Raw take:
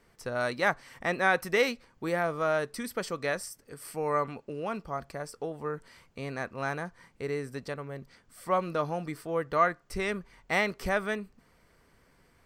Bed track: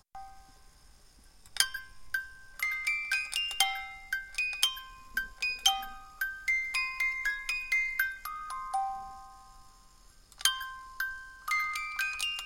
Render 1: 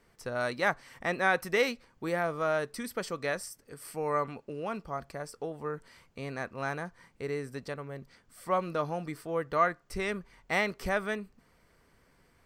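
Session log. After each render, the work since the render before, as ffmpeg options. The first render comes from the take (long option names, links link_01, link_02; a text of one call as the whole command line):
ffmpeg -i in.wav -af "volume=-1.5dB" out.wav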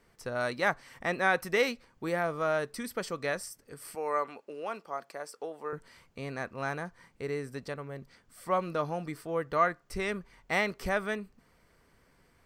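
ffmpeg -i in.wav -filter_complex "[0:a]asettb=1/sr,asplit=3[link_01][link_02][link_03];[link_01]atrim=end=3.954[link_04];[link_02]atrim=start=3.95:end=5.73,asetpts=PTS-STARTPTS,afade=type=in:duration=0.004:curve=qsin,afade=type=out:start_time=1.776:duration=0.004:curve=qsin,highpass=380[link_05];[link_03]atrim=start=5.726[link_06];[link_04][link_05]acrossfade=duration=0.004:curve1=hsin:curve2=qsin[link_07];[link_07][link_06]acrossfade=duration=0.004:curve1=qsin:curve2=hsin" out.wav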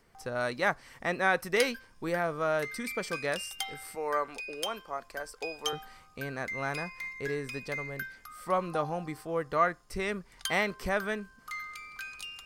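ffmpeg -i in.wav -i bed.wav -filter_complex "[1:a]volume=-9dB[link_01];[0:a][link_01]amix=inputs=2:normalize=0" out.wav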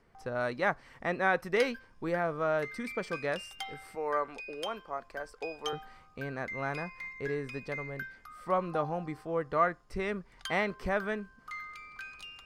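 ffmpeg -i in.wav -af "lowpass=frequency=2100:poles=1" out.wav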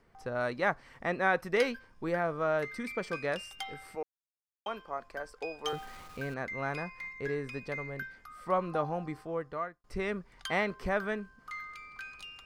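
ffmpeg -i in.wav -filter_complex "[0:a]asettb=1/sr,asplit=3[link_01][link_02][link_03];[link_01]atrim=end=5.654[link_04];[link_02]atrim=start=5.65:end=6.34,asetpts=PTS-STARTPTS,afade=type=in:duration=0.004:curve=qsin,afade=type=out:start_time=0.686:duration=0.004:curve=qsin,aeval=exprs='val(0)+0.5*0.00501*sgn(val(0))':channel_layout=same[link_05];[link_03]atrim=start=6.336[link_06];[link_04][link_05]acrossfade=duration=0.004:curve1=hsin:curve2=qsin[link_07];[link_07][link_06]acrossfade=duration=0.004:curve1=qsin:curve2=hsin,asplit=4[link_08][link_09][link_10][link_11];[link_08]atrim=end=4.03,asetpts=PTS-STARTPTS,afade=type=out:start_time=4.026:duration=0.004:curve=hsin[link_12];[link_09]atrim=start=4.03:end=4.66,asetpts=PTS-STARTPTS,volume=0[link_13];[link_10]atrim=start=4.66:end=9.84,asetpts=PTS-STARTPTS,afade=type=in:duration=0.004:curve=hsin,afade=type=out:start_time=4.51:duration=0.67[link_14];[link_11]atrim=start=9.84,asetpts=PTS-STARTPTS,afade=type=in:duration=0.004:curve=hsin[link_15];[link_12][link_13][link_14][link_15]concat=n=4:v=0:a=1" out.wav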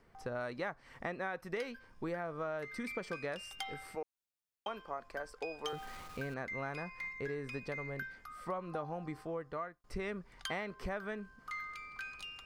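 ffmpeg -i in.wav -af "acompressor=threshold=-36dB:ratio=6" out.wav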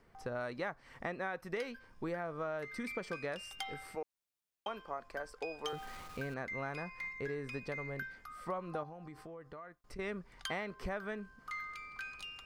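ffmpeg -i in.wav -filter_complex "[0:a]asettb=1/sr,asplit=3[link_01][link_02][link_03];[link_01]atrim=end=8.834[link_04];[link_02]atrim=start=8.83:end=9.99,asetpts=PTS-STARTPTS,afade=type=in:duration=0.004:curve=qsin,afade=type=out:start_time=1.156:duration=0.004:curve=qsin,acompressor=threshold=-46dB:ratio=4:attack=3.2:release=140:knee=1:detection=peak[link_05];[link_03]atrim=start=9.986[link_06];[link_04][link_05]acrossfade=duration=0.004:curve1=hsin:curve2=qsin[link_07];[link_07][link_06]acrossfade=duration=0.004:curve1=qsin:curve2=hsin" out.wav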